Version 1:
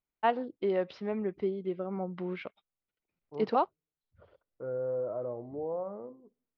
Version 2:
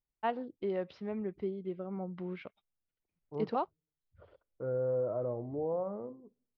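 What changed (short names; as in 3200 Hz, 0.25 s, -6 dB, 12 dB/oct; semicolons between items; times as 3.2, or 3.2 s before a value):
first voice -6.5 dB; master: add low shelf 150 Hz +11 dB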